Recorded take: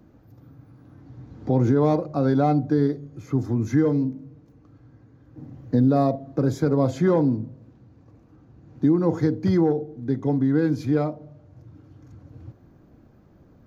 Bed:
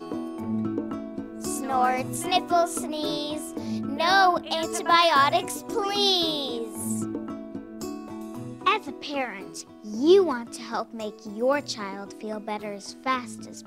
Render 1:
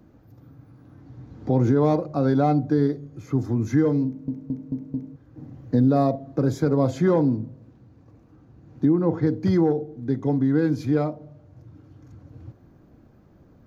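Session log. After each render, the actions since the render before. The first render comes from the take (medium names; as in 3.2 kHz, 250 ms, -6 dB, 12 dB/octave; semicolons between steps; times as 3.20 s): 4.06 s: stutter in place 0.22 s, 5 plays; 8.85–9.27 s: distance through air 230 m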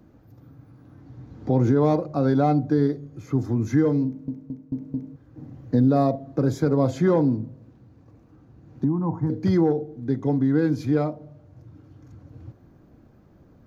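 4.13–4.72 s: fade out, to -10.5 dB; 8.84–9.30 s: FFT filter 230 Hz 0 dB, 480 Hz -15 dB, 950 Hz +5 dB, 1.4 kHz -11 dB, 4.3 kHz -22 dB, 8.1 kHz -1 dB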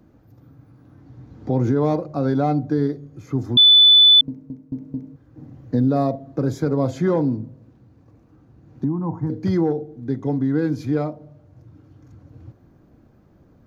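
3.57–4.21 s: bleep 3.49 kHz -7.5 dBFS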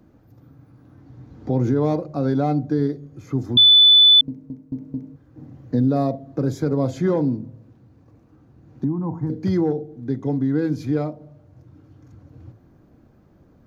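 de-hum 55.03 Hz, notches 3; dynamic bell 1.1 kHz, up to -3 dB, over -36 dBFS, Q 0.83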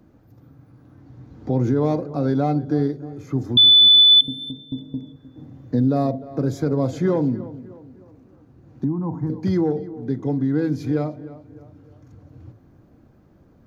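tape echo 305 ms, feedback 48%, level -15 dB, low-pass 2.2 kHz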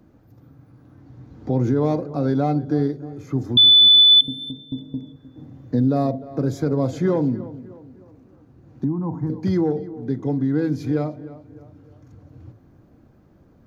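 no audible change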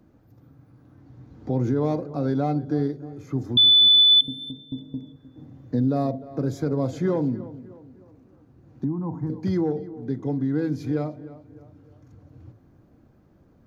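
trim -3.5 dB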